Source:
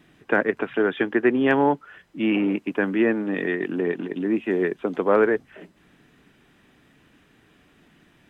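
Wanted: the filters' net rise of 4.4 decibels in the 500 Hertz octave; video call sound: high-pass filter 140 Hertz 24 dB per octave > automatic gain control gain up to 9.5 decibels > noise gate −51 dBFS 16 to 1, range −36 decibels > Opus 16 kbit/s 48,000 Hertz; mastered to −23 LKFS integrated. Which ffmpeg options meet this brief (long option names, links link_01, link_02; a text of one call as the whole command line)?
ffmpeg -i in.wav -af "highpass=frequency=140:width=0.5412,highpass=frequency=140:width=1.3066,equalizer=frequency=500:width_type=o:gain=5.5,dynaudnorm=maxgain=9.5dB,agate=range=-36dB:threshold=-51dB:ratio=16,volume=-2.5dB" -ar 48000 -c:a libopus -b:a 16k out.opus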